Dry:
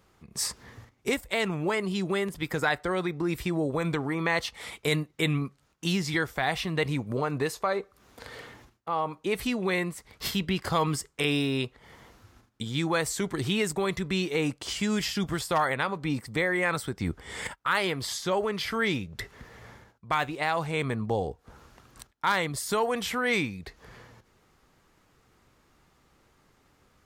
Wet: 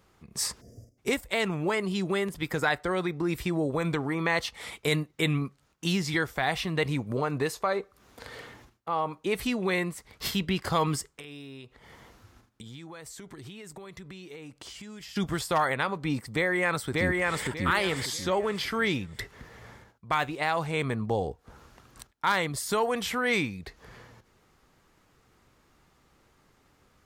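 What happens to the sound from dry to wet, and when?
0.61–0.98 spectral gain 720–4700 Hz -29 dB
11.12–15.16 compressor 8:1, threshold -41 dBFS
16.33–17.46 echo throw 0.59 s, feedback 30%, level -1 dB

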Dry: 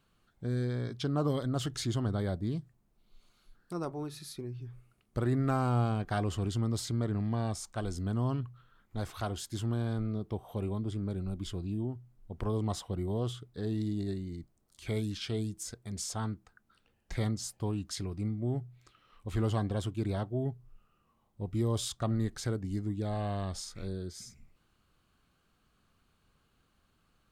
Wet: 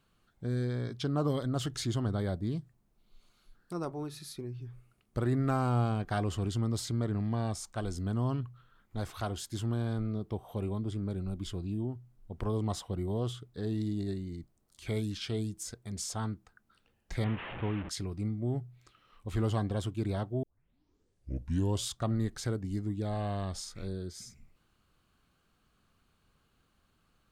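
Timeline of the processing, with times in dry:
17.24–17.89 delta modulation 16 kbps, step -35 dBFS
20.43 tape start 1.43 s

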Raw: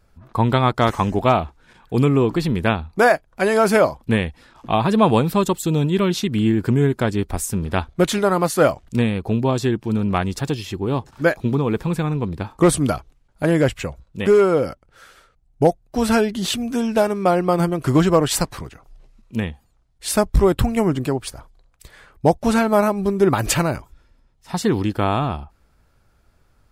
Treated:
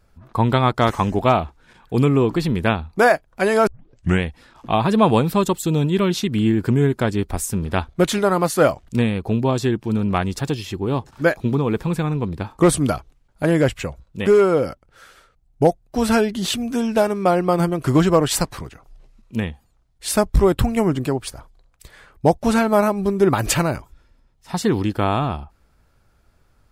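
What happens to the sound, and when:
3.67 tape start 0.56 s

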